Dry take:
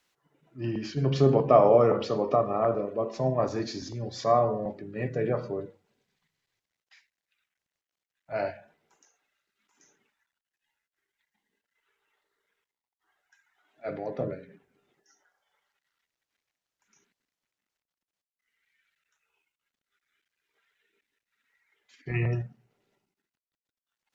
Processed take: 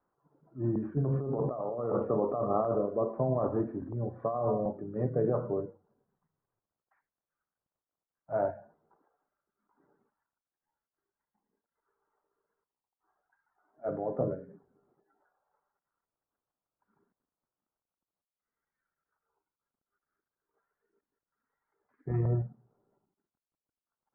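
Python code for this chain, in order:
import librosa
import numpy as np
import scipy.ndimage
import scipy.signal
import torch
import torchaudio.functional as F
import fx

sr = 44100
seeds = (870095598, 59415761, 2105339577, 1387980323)

y = fx.over_compress(x, sr, threshold_db=-27.0, ratio=-1.0)
y = scipy.signal.sosfilt(scipy.signal.butter(6, 1300.0, 'lowpass', fs=sr, output='sos'), y)
y = y * librosa.db_to_amplitude(-2.0)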